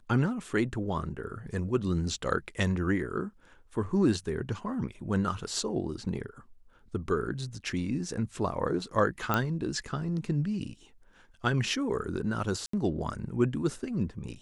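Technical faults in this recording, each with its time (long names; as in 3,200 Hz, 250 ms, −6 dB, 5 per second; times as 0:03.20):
0:09.34: click −12 dBFS
0:12.66–0:12.73: drop-out 74 ms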